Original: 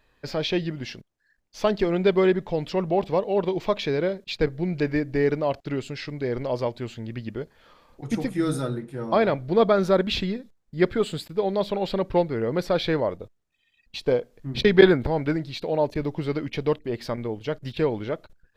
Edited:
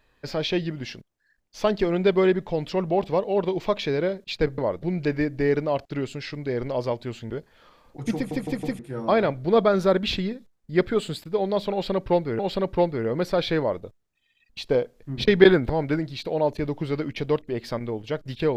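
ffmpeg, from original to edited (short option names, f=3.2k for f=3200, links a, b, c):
-filter_complex "[0:a]asplit=9[a][b][c][d][e][f][g][h][i];[a]atrim=end=4.582[j];[b]atrim=start=12.958:end=13.212[k];[c]atrim=start=4.578:end=7.052[l];[d]atrim=start=7.338:end=8.352[m];[e]atrim=start=8.188:end=8.352[n];[f]atrim=start=8.188:end=8.352[o];[g]atrim=start=8.188:end=8.352[p];[h]atrim=start=8.828:end=12.432[q];[i]atrim=start=11.758[r];[j][k]acrossfade=d=0.004:c1=hsin:c2=hsin[s];[s][l]acrossfade=d=0.004:c1=hsin:c2=hsin[t];[t][m]acrossfade=d=0.004:c1=hsin:c2=hsin[u];[u][n]acrossfade=d=0.004:c1=hsin:c2=hsin[v];[v][o]acrossfade=d=0.004:c1=hsin:c2=hsin[w];[w][p]acrossfade=d=0.004:c1=hsin:c2=hsin[x];[x][q]acrossfade=d=0.004:c1=hsin:c2=hsin[y];[y][r]acrossfade=d=0.004:c1=hsin:c2=hsin"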